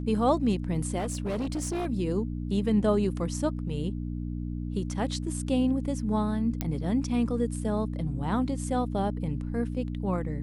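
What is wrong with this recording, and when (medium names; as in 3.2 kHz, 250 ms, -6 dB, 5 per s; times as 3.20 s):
hum 60 Hz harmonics 5 -33 dBFS
0.98–1.87 s: clipped -26.5 dBFS
6.61 s: pop -14 dBFS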